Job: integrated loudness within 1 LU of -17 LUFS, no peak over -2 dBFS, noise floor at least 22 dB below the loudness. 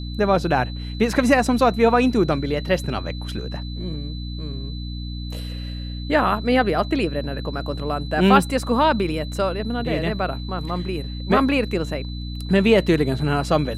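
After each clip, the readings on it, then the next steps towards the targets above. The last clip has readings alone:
hum 60 Hz; highest harmonic 300 Hz; hum level -28 dBFS; steady tone 4 kHz; tone level -39 dBFS; loudness -22.0 LUFS; peak level -1.5 dBFS; loudness target -17.0 LUFS
-> de-hum 60 Hz, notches 5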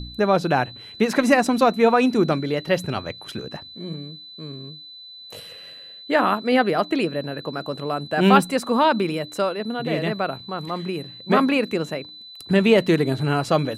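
hum not found; steady tone 4 kHz; tone level -39 dBFS
-> band-stop 4 kHz, Q 30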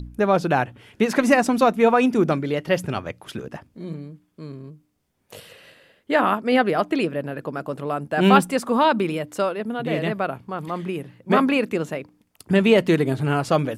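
steady tone not found; loudness -21.5 LUFS; peak level -1.5 dBFS; loudness target -17.0 LUFS
-> trim +4.5 dB; peak limiter -2 dBFS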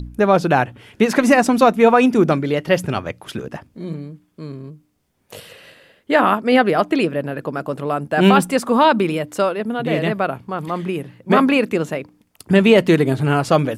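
loudness -17.0 LUFS; peak level -2.0 dBFS; noise floor -64 dBFS

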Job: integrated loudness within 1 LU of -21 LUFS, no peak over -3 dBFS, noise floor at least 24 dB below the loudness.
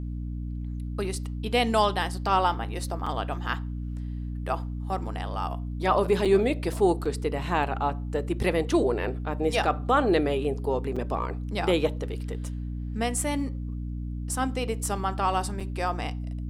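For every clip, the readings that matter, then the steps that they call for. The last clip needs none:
dropouts 5; longest dropout 5.2 ms; hum 60 Hz; highest harmonic 300 Hz; hum level -30 dBFS; loudness -28.0 LUFS; peak level -10.0 dBFS; loudness target -21.0 LUFS
-> interpolate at 3.06/6.25/7.05/10.96/15.60 s, 5.2 ms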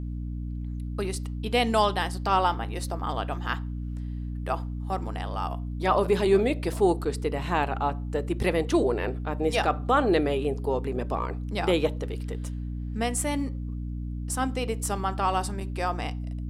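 dropouts 0; hum 60 Hz; highest harmonic 300 Hz; hum level -30 dBFS
-> hum notches 60/120/180/240/300 Hz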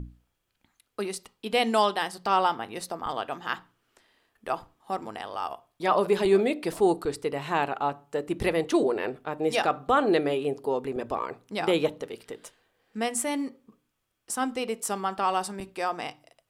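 hum not found; loudness -28.0 LUFS; peak level -11.0 dBFS; loudness target -21.0 LUFS
-> trim +7 dB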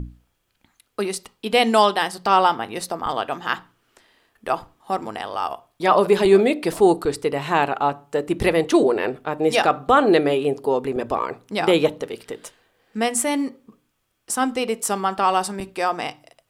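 loudness -21.0 LUFS; peak level -4.0 dBFS; noise floor -71 dBFS

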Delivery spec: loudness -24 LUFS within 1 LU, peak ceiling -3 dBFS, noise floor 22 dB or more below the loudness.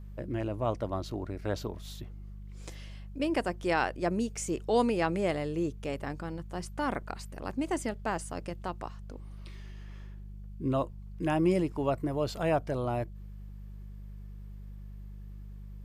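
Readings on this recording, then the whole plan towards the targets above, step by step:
hum 50 Hz; highest harmonic 200 Hz; hum level -41 dBFS; loudness -32.5 LUFS; peak level -15.0 dBFS; loudness target -24.0 LUFS
-> de-hum 50 Hz, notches 4; trim +8.5 dB

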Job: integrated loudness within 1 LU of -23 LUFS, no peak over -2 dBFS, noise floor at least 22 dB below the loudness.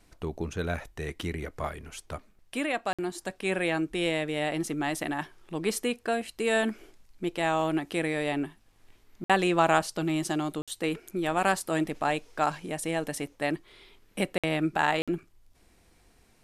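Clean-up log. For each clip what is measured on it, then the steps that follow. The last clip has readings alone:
dropouts 5; longest dropout 56 ms; loudness -29.5 LUFS; peak level -7.5 dBFS; loudness target -23.0 LUFS
-> interpolate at 2.93/9.24/10.62/14.38/15.02 s, 56 ms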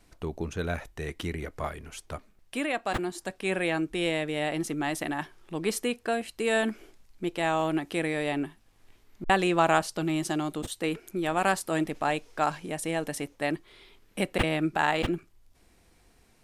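dropouts 0; loudness -29.5 LUFS; peak level -7.5 dBFS; loudness target -23.0 LUFS
-> trim +6.5 dB; peak limiter -2 dBFS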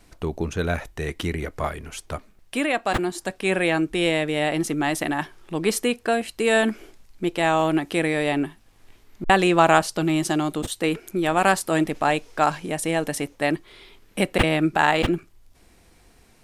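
loudness -23.0 LUFS; peak level -2.0 dBFS; noise floor -55 dBFS

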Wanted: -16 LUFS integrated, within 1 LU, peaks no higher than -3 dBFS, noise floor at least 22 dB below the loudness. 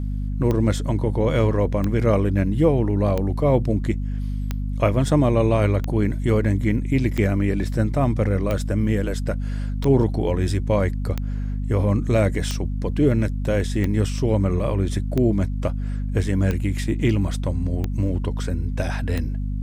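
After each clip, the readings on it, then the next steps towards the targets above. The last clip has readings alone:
clicks found 15; hum 50 Hz; highest harmonic 250 Hz; hum level -23 dBFS; loudness -22.0 LUFS; peak level -5.5 dBFS; loudness target -16.0 LUFS
-> de-click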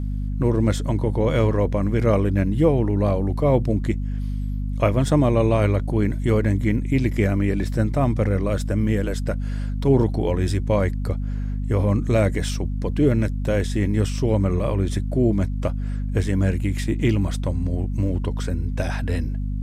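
clicks found 0; hum 50 Hz; highest harmonic 250 Hz; hum level -23 dBFS
-> hum notches 50/100/150/200/250 Hz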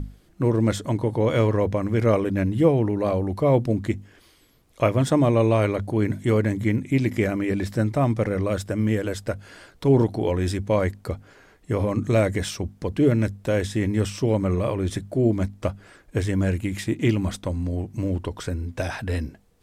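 hum not found; loudness -23.5 LUFS; peak level -7.0 dBFS; loudness target -16.0 LUFS
-> trim +7.5 dB; peak limiter -3 dBFS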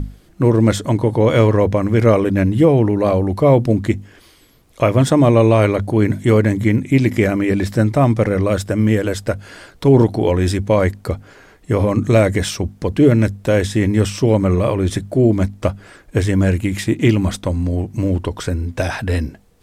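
loudness -16.5 LUFS; peak level -3.0 dBFS; noise floor -49 dBFS

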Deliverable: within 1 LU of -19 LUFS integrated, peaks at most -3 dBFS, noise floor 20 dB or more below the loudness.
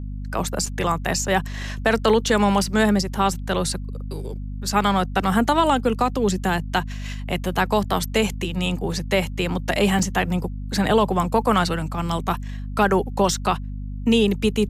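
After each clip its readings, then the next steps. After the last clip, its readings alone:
dropouts 2; longest dropout 4.1 ms; hum 50 Hz; highest harmonic 250 Hz; hum level -28 dBFS; loudness -22.0 LUFS; peak level -6.5 dBFS; loudness target -19.0 LUFS
-> interpolate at 0.66/9.99 s, 4.1 ms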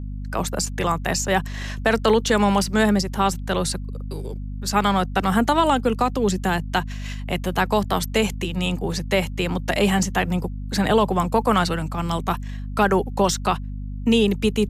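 dropouts 0; hum 50 Hz; highest harmonic 250 Hz; hum level -28 dBFS
-> hum notches 50/100/150/200/250 Hz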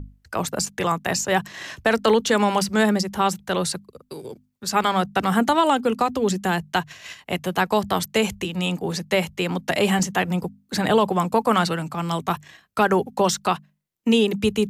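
hum not found; loudness -22.5 LUFS; peak level -7.0 dBFS; loudness target -19.0 LUFS
-> trim +3.5 dB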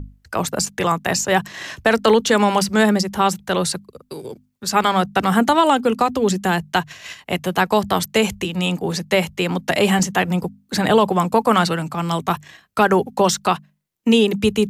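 loudness -19.0 LUFS; peak level -3.5 dBFS; noise floor -62 dBFS

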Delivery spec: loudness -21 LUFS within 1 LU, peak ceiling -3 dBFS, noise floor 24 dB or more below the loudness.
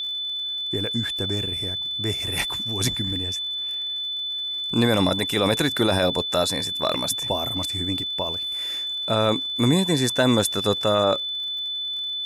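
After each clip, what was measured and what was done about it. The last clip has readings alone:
tick rate 53 per s; steady tone 3.5 kHz; tone level -26 dBFS; loudness -23.0 LUFS; peak level -8.5 dBFS; loudness target -21.0 LUFS
-> de-click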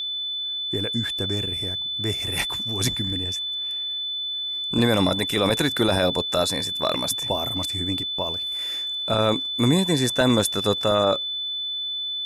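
tick rate 0.082 per s; steady tone 3.5 kHz; tone level -26 dBFS
-> band-stop 3.5 kHz, Q 30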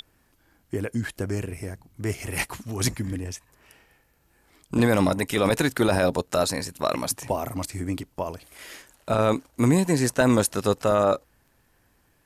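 steady tone not found; loudness -25.0 LUFS; peak level -9.5 dBFS; loudness target -21.0 LUFS
-> trim +4 dB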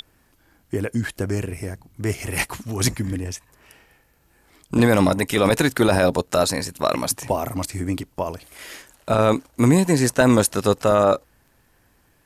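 loudness -21.0 LUFS; peak level -5.5 dBFS; noise floor -61 dBFS

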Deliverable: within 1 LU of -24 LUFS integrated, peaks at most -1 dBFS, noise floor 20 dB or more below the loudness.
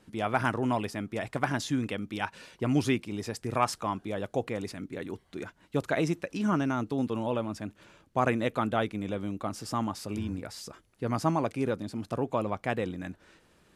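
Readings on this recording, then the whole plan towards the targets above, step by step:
loudness -31.5 LUFS; peak level -11.0 dBFS; loudness target -24.0 LUFS
-> trim +7.5 dB

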